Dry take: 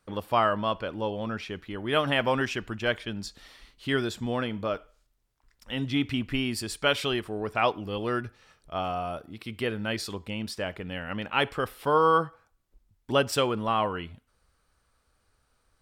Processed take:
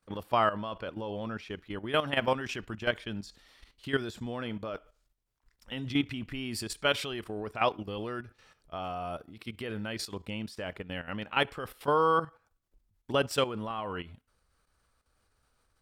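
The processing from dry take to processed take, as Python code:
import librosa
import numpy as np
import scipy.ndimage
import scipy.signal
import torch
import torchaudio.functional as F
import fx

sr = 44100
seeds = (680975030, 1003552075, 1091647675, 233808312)

y = fx.level_steps(x, sr, step_db=12)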